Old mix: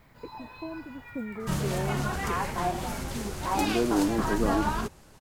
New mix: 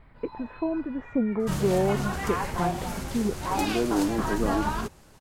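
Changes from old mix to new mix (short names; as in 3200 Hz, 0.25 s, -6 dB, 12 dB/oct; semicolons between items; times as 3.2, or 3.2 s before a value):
speech +10.5 dB; first sound: add running mean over 7 samples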